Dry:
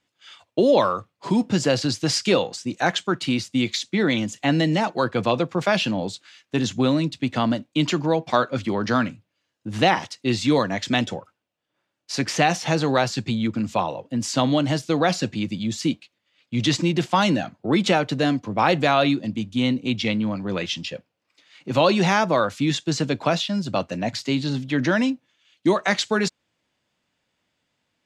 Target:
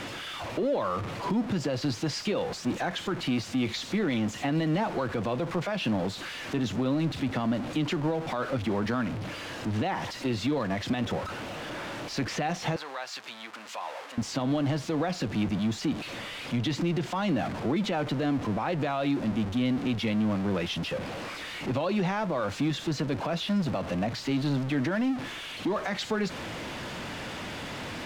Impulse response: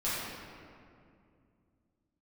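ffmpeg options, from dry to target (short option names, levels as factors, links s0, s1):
-filter_complex "[0:a]aeval=exprs='val(0)+0.5*0.0668*sgn(val(0))':c=same,aemphasis=mode=reproduction:type=75fm,alimiter=limit=0.178:level=0:latency=1:release=122,asettb=1/sr,asplit=3[s0][s1][s2];[s0]atrim=end=12.764[s3];[s1]atrim=start=12.76:end=14.18,asetpts=PTS-STARTPTS,afade=t=in:d=0.004:c=qsin,afade=t=out:st=1.416:d=0.004:c=qsin,highpass=980[s4];[s2]atrim=start=14.176[s5];[s3][s4]acrossfade=d=0.004:c1=hsin:c2=qsin[s6];[s6][s5]acrossfade=d=0.004:c1=qsin:c2=hsin,asettb=1/sr,asplit=3[s7][s8][s9];[s7]atrim=end=24.954[s10];[s8]atrim=start=24.95:end=25.9,asetpts=PTS-STARTPTS,afade=t=in:d=0.004:c=qsin,afade=t=out:st=0.946:d=0.004:c=qsin,asoftclip=type=hard:threshold=0.133[s11];[s9]atrim=start=25.896[s12];[s10][s11]acrossfade=d=0.004:c1=hsin:c2=qsin[s13];[s13][s12]acrossfade=d=0.004:c1=qsin:c2=hsin,volume=0.531"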